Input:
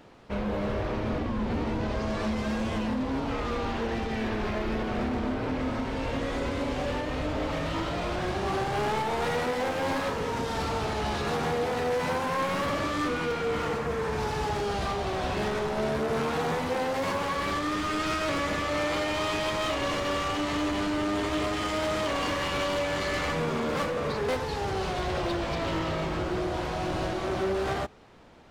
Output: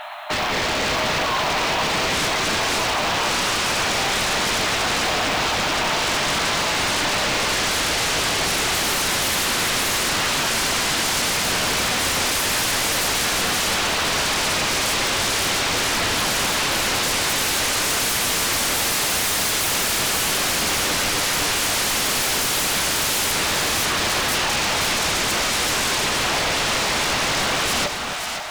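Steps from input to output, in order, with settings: FFT band-pass 590–4300 Hz; sine folder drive 20 dB, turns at -19.5 dBFS; modulation noise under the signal 22 dB; two-band feedback delay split 1 kHz, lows 267 ms, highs 526 ms, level -6.5 dB

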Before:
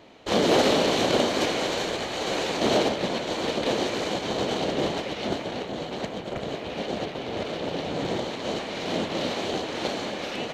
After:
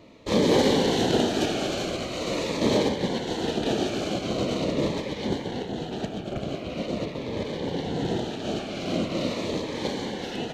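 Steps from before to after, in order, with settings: bass shelf 430 Hz +6.5 dB; Shepard-style phaser falling 0.43 Hz; trim -1.5 dB

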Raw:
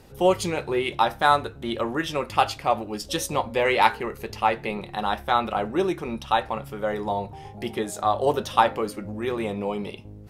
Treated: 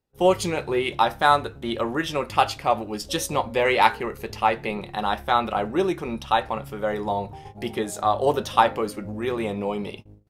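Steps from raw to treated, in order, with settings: gate -40 dBFS, range -32 dB; trim +1 dB

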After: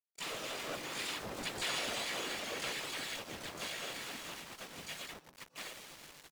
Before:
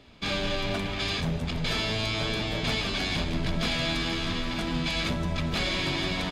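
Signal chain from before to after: Doppler pass-by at 1.83 s, 7 m/s, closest 3.3 m; reverb removal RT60 0.54 s; gate -46 dBFS, range -6 dB; high-pass 400 Hz 12 dB/octave; compression 2.5:1, threshold -50 dBFS, peak gain reduction 14.5 dB; whisper effect; small samples zeroed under -52.5 dBFS; harmony voices -5 st -5 dB, -3 st -1 dB, +12 st -3 dB; on a send: reverberation RT60 0.15 s, pre-delay 117 ms, DRR 15.5 dB; on the sum: trim +4.5 dB

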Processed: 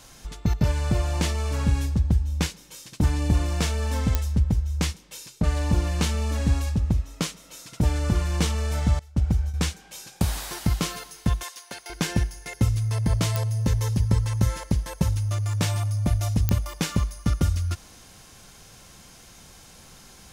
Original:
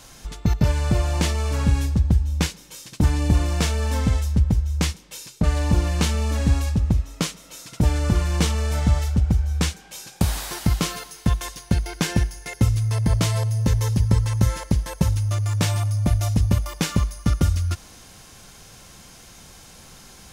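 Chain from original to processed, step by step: 8.99–9.54 s: gate with hold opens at -15 dBFS; 11.43–11.90 s: high-pass 670 Hz 12 dB/octave; clicks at 4.15/13.36/16.49 s, -5 dBFS; trim -3 dB

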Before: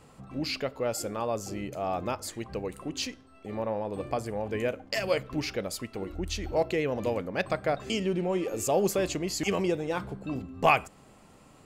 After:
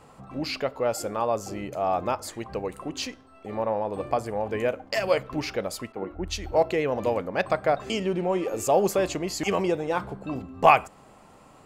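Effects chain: peaking EQ 880 Hz +7 dB 1.8 oct; 5.92–6.55 s: three bands expanded up and down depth 100%

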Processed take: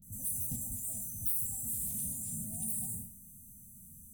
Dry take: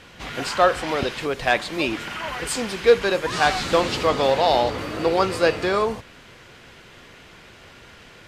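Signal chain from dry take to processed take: spectral sustain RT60 0.93 s; brick-wall FIR band-stop 410–3000 Hz; peaking EQ 580 Hz -14 dB 1.4 oct; phase dispersion highs, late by 45 ms, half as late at 1.1 kHz; overload inside the chain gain 22 dB; FFT filter 110 Hz 0 dB, 180 Hz -30 dB, 480 Hz -14 dB, 690 Hz -16 dB, 3.4 kHz +11 dB; feedback echo behind a high-pass 87 ms, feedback 51%, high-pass 4.5 kHz, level -6 dB; peak limiter -14.5 dBFS, peak gain reduction 8.5 dB; static phaser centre 1.4 kHz, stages 4; speed mistake 7.5 ips tape played at 15 ips; trim -5 dB

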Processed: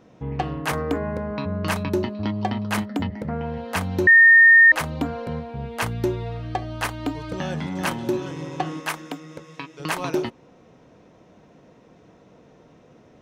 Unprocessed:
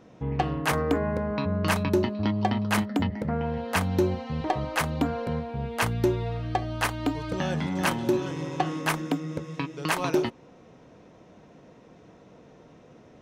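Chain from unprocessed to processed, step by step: 4.07–4.72 s: bleep 1.83 kHz -8 dBFS; 8.80–9.80 s: bass shelf 380 Hz -11.5 dB

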